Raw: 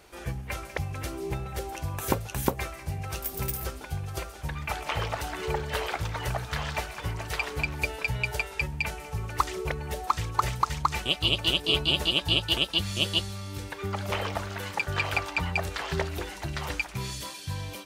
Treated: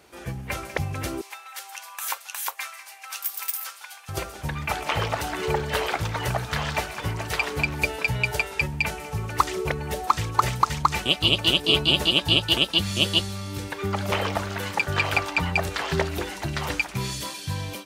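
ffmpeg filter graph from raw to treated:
ffmpeg -i in.wav -filter_complex "[0:a]asettb=1/sr,asplit=3[link_01][link_02][link_03];[link_01]atrim=end=1.214[link_04];[link_02]atrim=start=1.21:end=4.09,asetpts=PTS-STARTPTS,afade=type=in:duration=0.004:curve=qsin,afade=type=out:start_time=2.876:duration=0.004:curve=qsin,highpass=frequency=1000:width=0.5412,highpass=frequency=1000:width=1.3066,equalizer=frequency=1400:width_type=o:width=1.7:gain=-2.5[link_05];[link_03]atrim=start=4.086[link_06];[link_04][link_05]acrossfade=duration=0.004:curve1=hsin:curve2=qsin[link_07];[link_07][link_06]acrossfade=duration=0.004:curve1=qsin:curve2=hsin,highpass=77,equalizer=frequency=240:width_type=o:width=0.77:gain=3,dynaudnorm=framelen=250:gausssize=3:maxgain=5dB" out.wav

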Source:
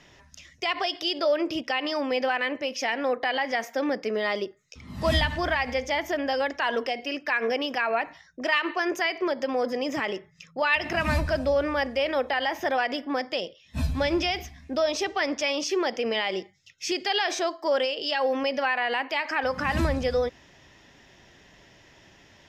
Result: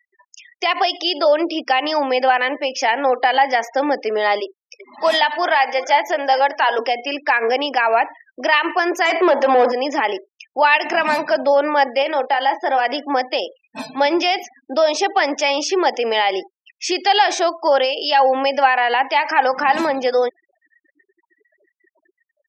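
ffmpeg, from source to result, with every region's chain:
ffmpeg -i in.wav -filter_complex "[0:a]asettb=1/sr,asplit=3[link_01][link_02][link_03];[link_01]atrim=end=4.404[link_04];[link_02]atrim=start=4.4:end=6.79,asetpts=PTS-STARTPTS,afade=type=in:duration=0.004:curve=qsin,afade=type=out:start_time=2.386:duration=0.004:curve=qsin,highpass=390,aecho=1:1:386:0.15,atrim=end_sample=105399[link_05];[link_03]atrim=start=6.786[link_06];[link_04][link_05]acrossfade=duration=0.004:curve1=hsin:curve2=qsin[link_07];[link_07][link_06]acrossfade=duration=0.004:curve1=qsin:curve2=hsin,asettb=1/sr,asplit=3[link_08][link_09][link_10];[link_08]atrim=end=9.054[link_11];[link_09]atrim=start=9.05:end=9.72,asetpts=PTS-STARTPTS,afade=type=in:duration=0.004:curve=qsin,afade=type=out:start_time=0.666:duration=0.004:curve=qsin,highshelf=frequency=8800:gain=-2.5,asplit=2[link_12][link_13];[link_13]highpass=frequency=720:poles=1,volume=23dB,asoftclip=type=tanh:threshold=-14.5dB[link_14];[link_12][link_14]amix=inputs=2:normalize=0,lowpass=frequency=1400:poles=1,volume=-6dB[link_15];[link_10]atrim=start=9.716[link_16];[link_11][link_15]acrossfade=duration=0.004:curve1=hsin:curve2=qsin[link_17];[link_17][link_16]acrossfade=duration=0.004:curve1=qsin:curve2=hsin,asettb=1/sr,asplit=3[link_18][link_19][link_20];[link_18]atrim=end=12.024[link_21];[link_19]atrim=start=12.02:end=12.85,asetpts=PTS-STARTPTS,afade=type=in:duration=0.004:curve=qsin,afade=type=out:start_time=0.826:duration=0.004:curve=qsin,agate=range=-7dB:threshold=-34dB:ratio=16:release=100:detection=peak,acompressor=threshold=-30dB:ratio=1.5:attack=3.2:release=140:knee=1:detection=peak,asplit=2[link_22][link_23];[link_23]adelay=33,volume=-11.5dB[link_24];[link_22][link_24]amix=inputs=2:normalize=0,atrim=end_sample=36603[link_25];[link_20]atrim=start=12.846[link_26];[link_21][link_25]acrossfade=duration=0.004:curve1=hsin:curve2=qsin[link_27];[link_27][link_26]acrossfade=duration=0.004:curve1=qsin:curve2=hsin,highpass=frequency=280:width=0.5412,highpass=frequency=280:width=1.3066,afftfilt=real='re*gte(hypot(re,im),0.00794)':imag='im*gte(hypot(re,im),0.00794)':win_size=1024:overlap=0.75,equalizer=frequency=840:width=4.3:gain=9.5,volume=7.5dB" out.wav

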